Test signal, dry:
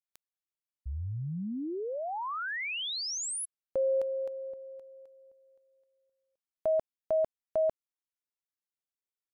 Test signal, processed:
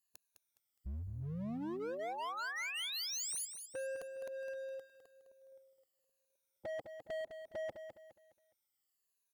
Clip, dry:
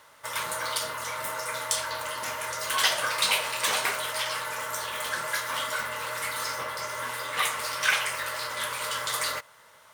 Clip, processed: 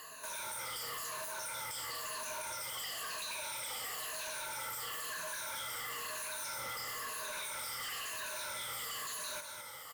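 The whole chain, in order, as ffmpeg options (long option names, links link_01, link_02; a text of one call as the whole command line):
ffmpeg -i in.wav -filter_complex "[0:a]afftfilt=real='re*pow(10,19/40*sin(2*PI*(1.5*log(max(b,1)*sr/1024/100)/log(2)-(-1)*(pts-256)/sr)))':imag='im*pow(10,19/40*sin(2*PI*(1.5*log(max(b,1)*sr/1024/100)/log(2)-(-1)*(pts-256)/sr)))':win_size=1024:overlap=0.75,aemphasis=mode=production:type=cd,acompressor=threshold=-32dB:ratio=8:attack=0.75:release=77:knee=1:detection=rms,asoftclip=type=hard:threshold=-38.5dB,asplit=2[link_01][link_02];[link_02]aecho=0:1:207|414|621|828:0.376|0.132|0.046|0.0161[link_03];[link_01][link_03]amix=inputs=2:normalize=0,volume=-1dB" out.wav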